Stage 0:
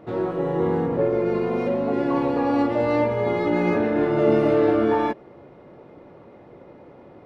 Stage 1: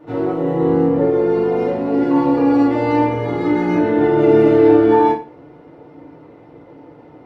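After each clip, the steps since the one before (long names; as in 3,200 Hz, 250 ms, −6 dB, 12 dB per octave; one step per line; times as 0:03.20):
feedback delay network reverb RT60 0.34 s, low-frequency decay 1.1×, high-frequency decay 0.95×, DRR −7.5 dB
level −5 dB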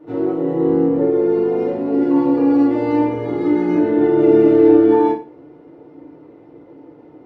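parametric band 340 Hz +8.5 dB 1.1 octaves
level −6.5 dB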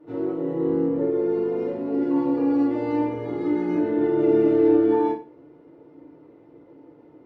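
notch filter 750 Hz, Q 22
level −7 dB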